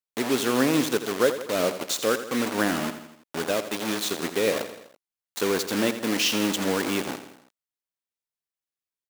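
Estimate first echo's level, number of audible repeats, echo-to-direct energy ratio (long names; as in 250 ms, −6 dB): −11.5 dB, 4, −10.0 dB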